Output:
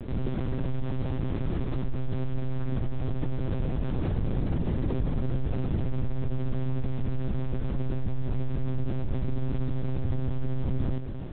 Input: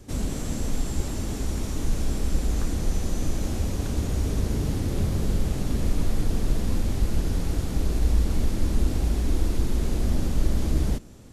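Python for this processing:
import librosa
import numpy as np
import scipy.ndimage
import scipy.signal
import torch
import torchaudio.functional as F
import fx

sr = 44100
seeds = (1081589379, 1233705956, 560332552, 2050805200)

p1 = fx.high_shelf(x, sr, hz=2200.0, db=-9.5)
p2 = np.clip(10.0 ** (21.0 / 20.0) * p1, -1.0, 1.0) / 10.0 ** (21.0 / 20.0)
p3 = p1 + F.gain(torch.from_numpy(p2), -8.5).numpy()
p4 = p3 + 10.0 ** (-18.0 / 20.0) * np.pad(p3, (int(273 * sr / 1000.0), 0))[:len(p3)]
p5 = fx.lpc_monotone(p4, sr, seeds[0], pitch_hz=130.0, order=10)
p6 = fx.env_flatten(p5, sr, amount_pct=50)
y = F.gain(torch.from_numpy(p6), -8.0).numpy()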